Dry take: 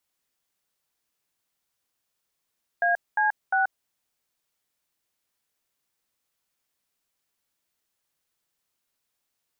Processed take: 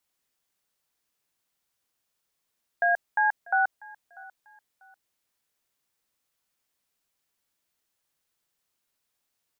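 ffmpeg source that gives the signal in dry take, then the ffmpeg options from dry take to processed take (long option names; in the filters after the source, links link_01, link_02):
-f lavfi -i "aevalsrc='0.0794*clip(min(mod(t,0.352),0.132-mod(t,0.352))/0.002,0,1)*(eq(floor(t/0.352),0)*(sin(2*PI*697*mod(t,0.352))+sin(2*PI*1633*mod(t,0.352)))+eq(floor(t/0.352),1)*(sin(2*PI*852*mod(t,0.352))+sin(2*PI*1633*mod(t,0.352)))+eq(floor(t/0.352),2)*(sin(2*PI*770*mod(t,0.352))+sin(2*PI*1477*mod(t,0.352))))':duration=1.056:sample_rate=44100"
-af "aecho=1:1:643|1286:0.075|0.0232"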